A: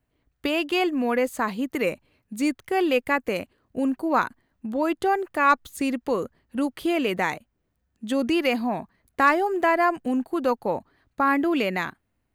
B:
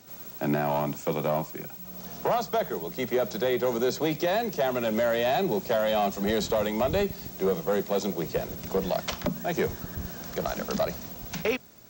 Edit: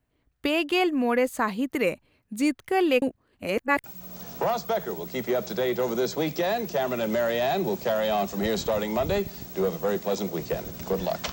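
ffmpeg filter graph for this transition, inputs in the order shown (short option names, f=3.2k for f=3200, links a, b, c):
-filter_complex "[0:a]apad=whole_dur=11.32,atrim=end=11.32,asplit=2[a][b];[a]atrim=end=3.022[c];[b]atrim=start=3.018:end=3.842,asetpts=PTS-STARTPTS,areverse[d];[1:a]atrim=start=1.678:end=9.16[e];[c][d]acrossfade=d=0.004:c1=hsin:c2=hsin[f];[f][e]acrossfade=d=0.004:c1=hsin:c2=hsin"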